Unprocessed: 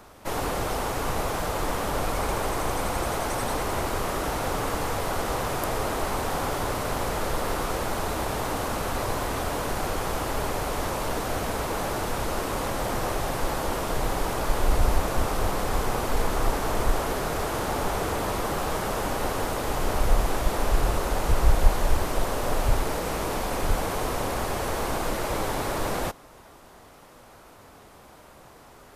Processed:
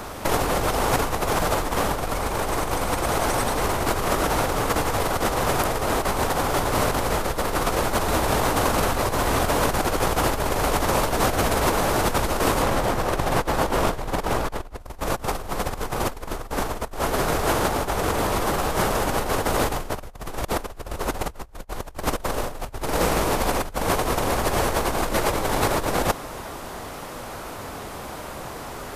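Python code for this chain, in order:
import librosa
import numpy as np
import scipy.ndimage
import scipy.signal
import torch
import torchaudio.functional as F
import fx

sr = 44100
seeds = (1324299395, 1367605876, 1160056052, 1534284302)

y = fx.high_shelf(x, sr, hz=4600.0, db=-6.0, at=(12.62, 14.8))
y = fx.over_compress(y, sr, threshold_db=-31.0, ratio=-0.5)
y = F.gain(torch.from_numpy(y), 8.5).numpy()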